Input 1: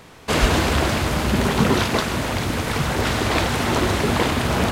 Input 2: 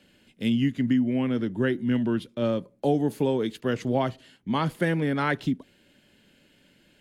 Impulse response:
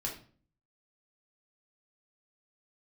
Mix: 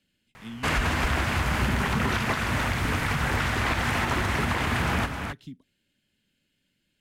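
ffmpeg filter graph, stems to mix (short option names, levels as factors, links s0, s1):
-filter_complex "[0:a]firequalizer=gain_entry='entry(390,0);entry(780,7);entry(1800,7);entry(3800,-5)':delay=0.05:min_phase=1,adelay=350,volume=0.891,asplit=2[s0][s1];[s1]volume=0.335[s2];[1:a]volume=0.299[s3];[s2]aecho=0:1:264:1[s4];[s0][s3][s4]amix=inputs=3:normalize=0,equalizer=f=620:w=0.45:g=-10.5,alimiter=limit=0.168:level=0:latency=1:release=102"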